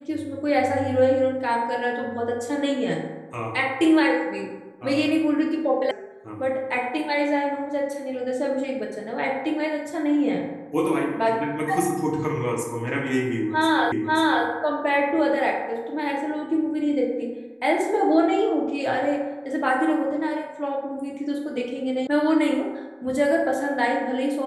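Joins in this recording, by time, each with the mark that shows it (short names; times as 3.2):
5.91 sound cut off
13.92 repeat of the last 0.54 s
22.07 sound cut off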